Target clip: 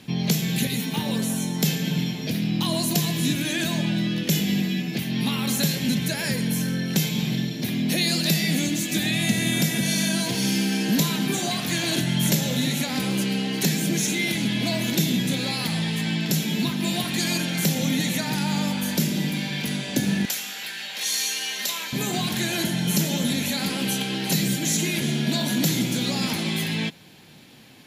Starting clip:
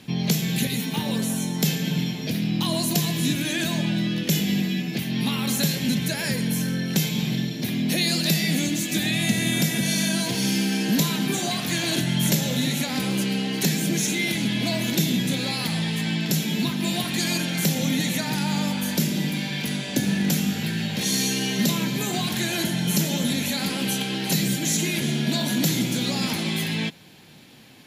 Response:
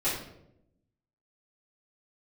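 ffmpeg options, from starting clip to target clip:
-filter_complex "[0:a]asettb=1/sr,asplit=3[link_01][link_02][link_03];[link_01]atrim=end=20.254[link_04];[link_02]atrim=start=20.25:end=21.93,asetpts=PTS-STARTPTS,afade=type=in:duration=0.004:curve=qsin,afade=type=out:start_time=1.676:duration=0.004:curve=qsin,highpass=910[link_05];[link_03]atrim=start=21.926[link_06];[link_04][link_05]acrossfade=duration=0.004:curve1=hsin:curve2=qsin[link_07];[link_07][link_06]acrossfade=duration=0.004:curve1=qsin:curve2=hsin"

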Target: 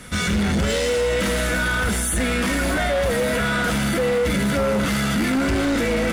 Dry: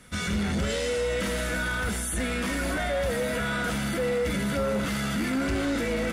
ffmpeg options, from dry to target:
ffmpeg -i in.wav -filter_complex "[0:a]asplit=2[link_01][link_02];[link_02]alimiter=level_in=8dB:limit=-24dB:level=0:latency=1,volume=-8dB,volume=2dB[link_03];[link_01][link_03]amix=inputs=2:normalize=0,asoftclip=type=hard:threshold=-22dB,volume=5dB" out.wav

